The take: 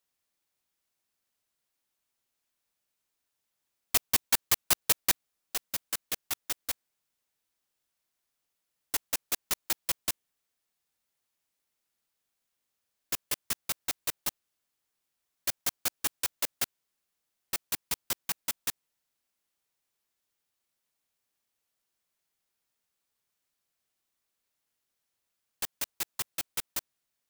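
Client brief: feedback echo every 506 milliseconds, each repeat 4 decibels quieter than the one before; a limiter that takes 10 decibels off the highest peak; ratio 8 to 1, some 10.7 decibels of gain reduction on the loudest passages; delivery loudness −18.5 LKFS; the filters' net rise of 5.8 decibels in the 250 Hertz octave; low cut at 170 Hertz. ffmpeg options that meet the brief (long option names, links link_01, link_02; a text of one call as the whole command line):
ffmpeg -i in.wav -af "highpass=170,equalizer=frequency=250:width_type=o:gain=8.5,acompressor=threshold=-31dB:ratio=8,alimiter=level_in=1dB:limit=-24dB:level=0:latency=1,volume=-1dB,aecho=1:1:506|1012|1518|2024|2530|3036|3542|4048|4554:0.631|0.398|0.25|0.158|0.0994|0.0626|0.0394|0.0249|0.0157,volume=23dB" out.wav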